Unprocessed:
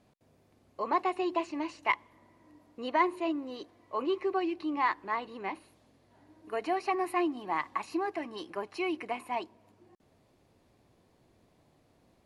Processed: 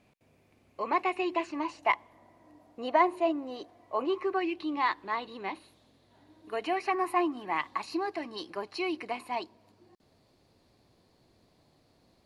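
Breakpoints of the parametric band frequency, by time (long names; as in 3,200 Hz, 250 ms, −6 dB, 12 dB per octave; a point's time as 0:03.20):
parametric band +9.5 dB 0.48 octaves
0:01.31 2,400 Hz
0:01.80 710 Hz
0:04.04 710 Hz
0:04.65 3,800 Hz
0:06.56 3,800 Hz
0:07.19 830 Hz
0:07.74 4,400 Hz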